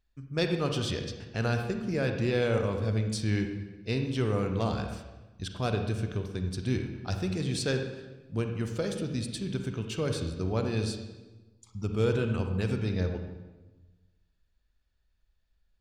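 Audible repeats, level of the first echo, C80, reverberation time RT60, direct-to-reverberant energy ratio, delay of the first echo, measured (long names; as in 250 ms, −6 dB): no echo audible, no echo audible, 8.0 dB, 1.2 s, 5.0 dB, no echo audible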